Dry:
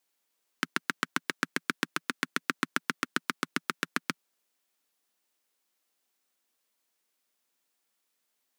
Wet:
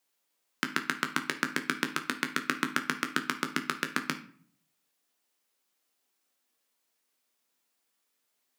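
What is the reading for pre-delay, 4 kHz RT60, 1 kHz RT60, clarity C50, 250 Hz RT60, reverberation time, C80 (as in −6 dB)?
13 ms, 0.35 s, 0.50 s, 12.0 dB, 0.70 s, 0.50 s, 16.5 dB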